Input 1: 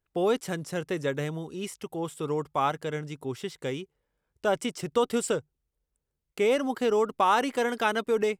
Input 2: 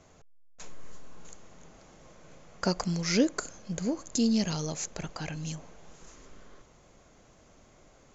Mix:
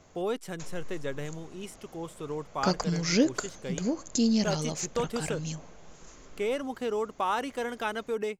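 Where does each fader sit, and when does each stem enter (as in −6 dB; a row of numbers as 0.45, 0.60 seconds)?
−6.0, +1.0 decibels; 0.00, 0.00 seconds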